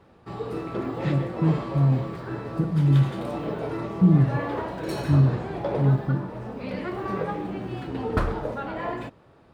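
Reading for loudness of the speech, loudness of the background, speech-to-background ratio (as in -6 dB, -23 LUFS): -23.5 LUFS, -31.5 LUFS, 8.0 dB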